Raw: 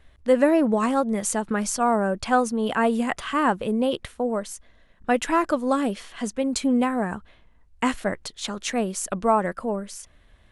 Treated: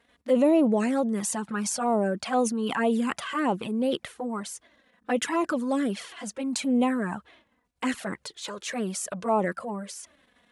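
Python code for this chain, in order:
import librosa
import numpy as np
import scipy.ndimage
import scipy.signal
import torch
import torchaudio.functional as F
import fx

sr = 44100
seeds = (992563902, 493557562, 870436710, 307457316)

y = fx.env_flanger(x, sr, rest_ms=4.4, full_db=-16.5)
y = fx.transient(y, sr, attack_db=-4, sustain_db=5)
y = scipy.signal.sosfilt(scipy.signal.butter(2, 180.0, 'highpass', fs=sr, output='sos'), y)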